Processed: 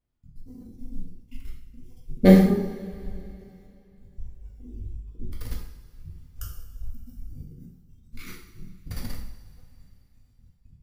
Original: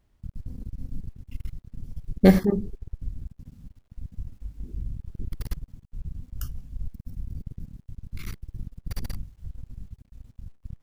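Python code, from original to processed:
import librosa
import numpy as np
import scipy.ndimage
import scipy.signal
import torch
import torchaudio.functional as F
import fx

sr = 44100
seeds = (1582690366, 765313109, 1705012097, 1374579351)

y = fx.noise_reduce_blind(x, sr, reduce_db=14)
y = fx.rev_double_slope(y, sr, seeds[0], early_s=0.63, late_s=3.1, knee_db=-18, drr_db=-2.5)
y = F.gain(torch.from_numpy(y), -3.0).numpy()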